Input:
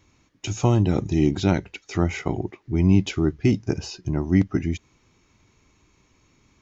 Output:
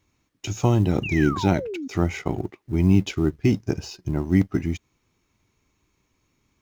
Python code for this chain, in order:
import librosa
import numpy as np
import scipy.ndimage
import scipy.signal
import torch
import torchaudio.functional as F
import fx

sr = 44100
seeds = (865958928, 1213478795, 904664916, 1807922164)

y = fx.law_mismatch(x, sr, coded='A')
y = fx.spec_paint(y, sr, seeds[0], shape='fall', start_s=1.03, length_s=0.85, low_hz=250.0, high_hz=2900.0, level_db=-31.0)